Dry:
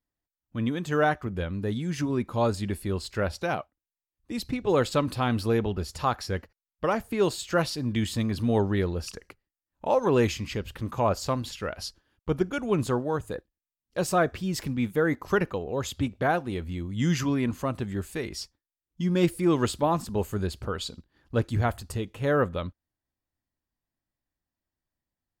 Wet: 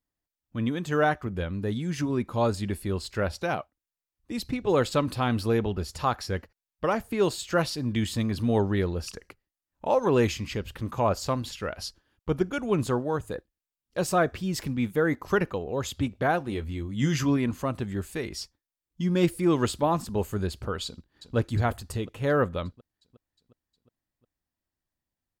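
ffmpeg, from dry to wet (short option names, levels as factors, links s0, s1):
-filter_complex "[0:a]asettb=1/sr,asplit=3[s0][s1][s2];[s0]atrim=end=16.394[s3];[s1]atrim=start=16.39:end=17.37,asetpts=PTS-STARTPTS,afade=t=in:d=0.004:c=qsin,afade=t=out:st=0.976:d=0.004:c=qsin,asplit=2[s4][s5];[s5]adelay=14,volume=0.398[s6];[s4][s6]amix=inputs=2:normalize=0,atrim=end_sample=43218[s7];[s2]atrim=start=17.366[s8];[s3][s7]acrossfade=d=0.004:c1=hsin:c2=qsin[s9];[s9][s8]acrossfade=d=0.004:c1=qsin:c2=hsin,asplit=2[s10][s11];[s11]afade=t=in:st=20.85:d=0.01,afade=t=out:st=21.36:d=0.01,aecho=0:1:360|720|1080|1440|1800|2160|2520|2880:0.281838|0.183195|0.119077|0.0773998|0.0503099|0.0327014|0.0212559|0.0138164[s12];[s10][s12]amix=inputs=2:normalize=0"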